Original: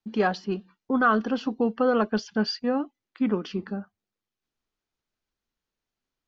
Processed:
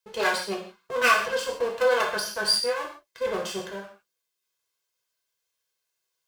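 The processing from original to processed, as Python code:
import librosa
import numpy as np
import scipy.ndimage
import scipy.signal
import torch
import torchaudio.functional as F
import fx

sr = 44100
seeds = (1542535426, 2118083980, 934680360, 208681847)

y = fx.lower_of_two(x, sr, delay_ms=1.9)
y = fx.highpass(y, sr, hz=580.0, slope=6)
y = fx.high_shelf(y, sr, hz=3900.0, db=10.5)
y = fx.rev_gated(y, sr, seeds[0], gate_ms=190, shape='falling', drr_db=-2.0)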